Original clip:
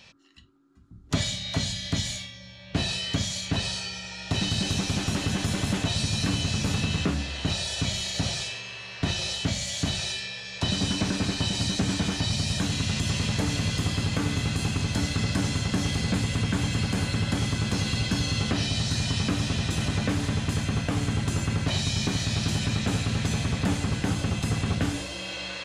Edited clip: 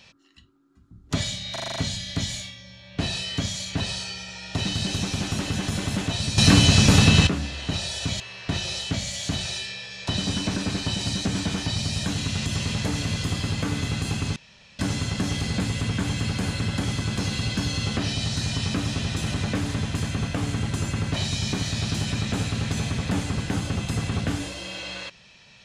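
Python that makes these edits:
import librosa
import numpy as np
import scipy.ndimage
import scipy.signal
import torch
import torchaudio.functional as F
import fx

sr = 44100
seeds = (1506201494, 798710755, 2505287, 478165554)

y = fx.edit(x, sr, fx.stutter(start_s=1.52, slice_s=0.04, count=7),
    fx.clip_gain(start_s=6.14, length_s=0.89, db=11.0),
    fx.cut(start_s=7.96, length_s=0.78),
    fx.room_tone_fill(start_s=14.9, length_s=0.43), tone=tone)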